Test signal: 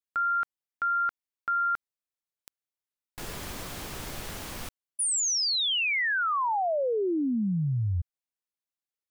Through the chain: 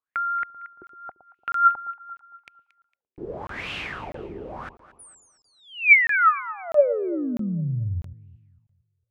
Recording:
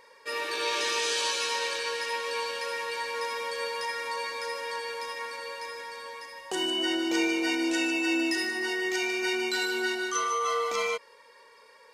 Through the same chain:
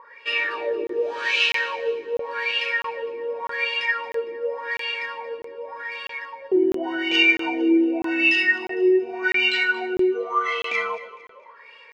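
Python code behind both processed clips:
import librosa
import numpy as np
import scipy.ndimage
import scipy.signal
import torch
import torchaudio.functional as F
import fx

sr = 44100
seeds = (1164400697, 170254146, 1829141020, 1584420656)

p1 = fx.vibrato(x, sr, rate_hz=10.0, depth_cents=6.8)
p2 = fx.filter_lfo_lowpass(p1, sr, shape='sine', hz=0.87, low_hz=360.0, high_hz=2800.0, q=7.1)
p3 = fx.high_shelf(p2, sr, hz=4000.0, db=10.5)
p4 = p3 + fx.echo_alternate(p3, sr, ms=114, hz=900.0, feedback_pct=60, wet_db=-12.0, dry=0)
p5 = fx.dynamic_eq(p4, sr, hz=1100.0, q=1.5, threshold_db=-36.0, ratio=4.0, max_db=-5)
p6 = scipy.signal.sosfilt(scipy.signal.butter(2, 44.0, 'highpass', fs=sr, output='sos'), p5)
y = fx.buffer_crackle(p6, sr, first_s=0.87, period_s=0.65, block=1024, kind='zero')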